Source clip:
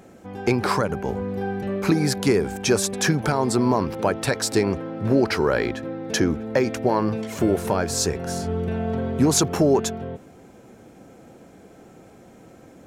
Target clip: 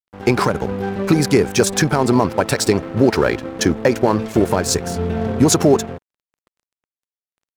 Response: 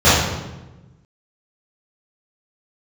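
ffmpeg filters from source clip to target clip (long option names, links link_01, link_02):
-af "aeval=exprs='sgn(val(0))*max(abs(val(0))-0.0133,0)':channel_layout=same,atempo=1.7,volume=6.5dB"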